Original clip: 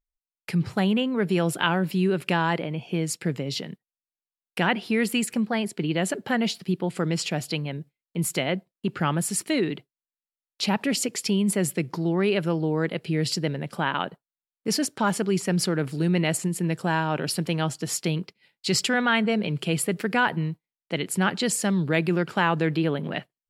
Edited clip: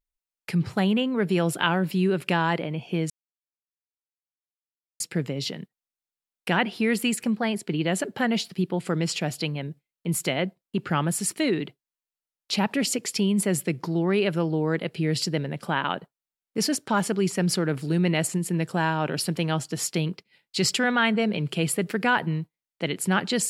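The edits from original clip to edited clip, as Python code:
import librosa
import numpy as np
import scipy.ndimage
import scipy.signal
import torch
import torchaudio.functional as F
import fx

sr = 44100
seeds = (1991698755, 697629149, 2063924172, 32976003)

y = fx.edit(x, sr, fx.insert_silence(at_s=3.1, length_s=1.9), tone=tone)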